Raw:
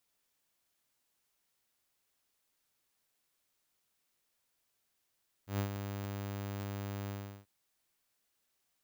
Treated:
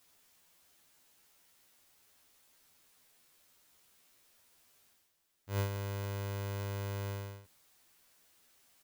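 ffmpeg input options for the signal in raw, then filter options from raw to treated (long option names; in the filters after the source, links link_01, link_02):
-f lavfi -i "aevalsrc='0.0422*(2*mod(100*t,1)-1)':duration=1.986:sample_rate=44100,afade=type=in:duration=0.119,afade=type=out:start_time=0.119:duration=0.096:silence=0.422,afade=type=out:start_time=1.62:duration=0.366"
-filter_complex "[0:a]areverse,acompressor=mode=upward:threshold=-58dB:ratio=2.5,areverse,asplit=2[link_01][link_02];[link_02]adelay=12,volume=-2.5dB[link_03];[link_01][link_03]amix=inputs=2:normalize=0"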